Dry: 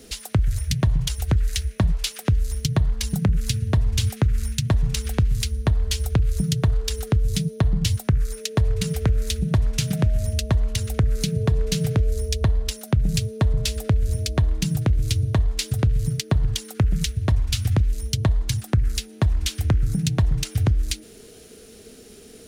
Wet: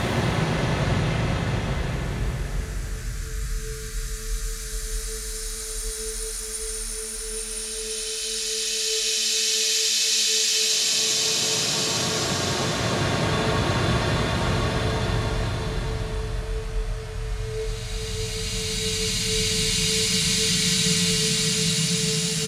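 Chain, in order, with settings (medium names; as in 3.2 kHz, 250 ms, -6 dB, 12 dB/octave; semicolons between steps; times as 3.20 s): RIAA curve recording; Paulstretch 28×, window 0.25 s, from 8.09 s; in parallel at -6 dB: overload inside the chain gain 18.5 dB; on the sum: distance through air 73 m; delay 613 ms -13.5 dB; on a send at -6.5 dB: reverberation RT60 0.80 s, pre-delay 6 ms; on the sum: trim +1 dB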